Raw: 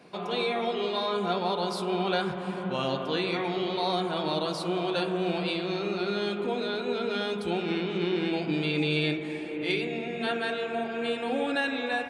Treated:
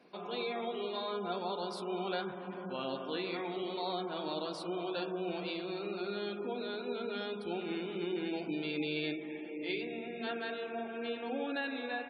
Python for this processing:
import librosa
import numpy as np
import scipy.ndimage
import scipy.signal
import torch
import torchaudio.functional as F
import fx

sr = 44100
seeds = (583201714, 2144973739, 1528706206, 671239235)

y = fx.spec_gate(x, sr, threshold_db=-30, keep='strong')
y = fx.low_shelf_res(y, sr, hz=180.0, db=-7.0, q=1.5)
y = y * 10.0 ** (-9.0 / 20.0)